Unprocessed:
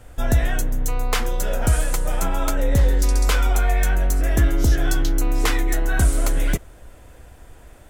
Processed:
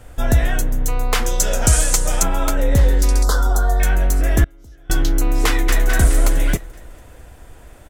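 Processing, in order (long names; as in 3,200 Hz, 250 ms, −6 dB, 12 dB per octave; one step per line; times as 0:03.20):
0:01.26–0:02.23: parametric band 6,400 Hz +12.5 dB 1.4 octaves
0:03.23–0:03.80: Chebyshev band-stop filter 1,400–4,200 Hz, order 2
0:04.44–0:04.90: noise gate −6 dBFS, range −29 dB
0:05.47–0:05.87: delay throw 210 ms, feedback 50%, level −2 dB
level +3 dB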